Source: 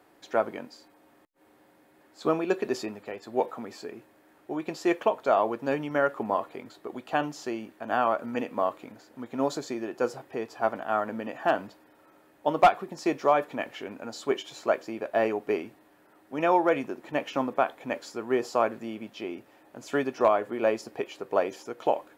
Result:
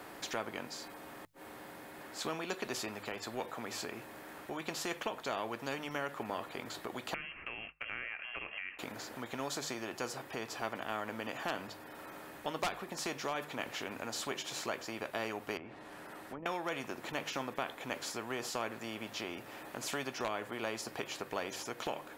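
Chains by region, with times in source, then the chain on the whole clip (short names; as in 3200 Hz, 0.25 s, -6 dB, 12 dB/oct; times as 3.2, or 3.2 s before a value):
7.14–8.79 expander -40 dBFS + compressor 2.5:1, threshold -42 dBFS + inverted band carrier 3000 Hz
15.57–16.46 treble ducked by the level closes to 370 Hz, closed at -28.5 dBFS + compressor 2:1, threshold -46 dBFS
whole clip: notches 50/100/150 Hz; compressor 1.5:1, threshold -47 dBFS; spectral compressor 2:1; gain +1.5 dB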